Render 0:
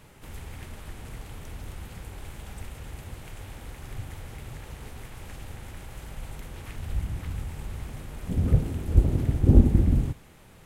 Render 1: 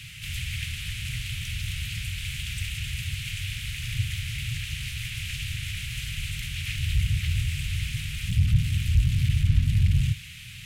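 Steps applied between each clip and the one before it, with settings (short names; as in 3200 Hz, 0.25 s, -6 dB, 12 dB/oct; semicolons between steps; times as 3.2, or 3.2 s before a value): overdrive pedal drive 39 dB, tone 1200 Hz, clips at -3.5 dBFS; elliptic band-stop 120–2600 Hz, stop band 80 dB; gain -3.5 dB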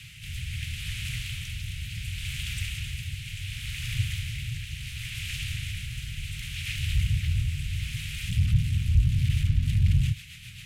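rotary speaker horn 0.7 Hz, later 7.5 Hz, at 9.17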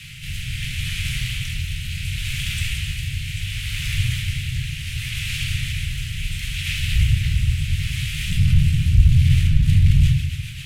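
reverb RT60 0.65 s, pre-delay 6 ms, DRR 0.5 dB; gain +5.5 dB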